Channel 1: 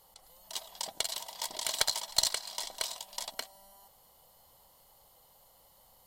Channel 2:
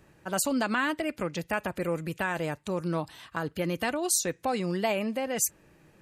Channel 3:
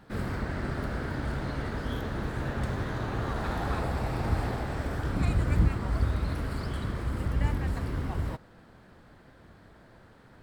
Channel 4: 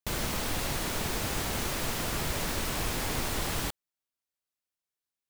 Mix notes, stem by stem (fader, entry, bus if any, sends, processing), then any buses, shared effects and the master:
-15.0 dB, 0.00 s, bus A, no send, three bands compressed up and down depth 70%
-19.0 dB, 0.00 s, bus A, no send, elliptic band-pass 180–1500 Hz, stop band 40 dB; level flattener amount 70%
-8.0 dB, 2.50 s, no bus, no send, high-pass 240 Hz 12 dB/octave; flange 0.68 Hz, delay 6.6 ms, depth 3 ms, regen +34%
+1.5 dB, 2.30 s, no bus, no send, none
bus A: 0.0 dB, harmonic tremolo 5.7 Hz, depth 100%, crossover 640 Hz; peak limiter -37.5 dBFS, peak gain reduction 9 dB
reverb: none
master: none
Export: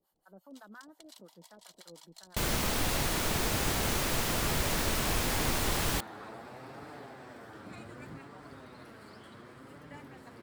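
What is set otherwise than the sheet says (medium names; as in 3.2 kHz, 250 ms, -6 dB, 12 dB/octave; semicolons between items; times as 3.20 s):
stem 1: missing three bands compressed up and down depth 70%; stem 2: missing level flattener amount 70%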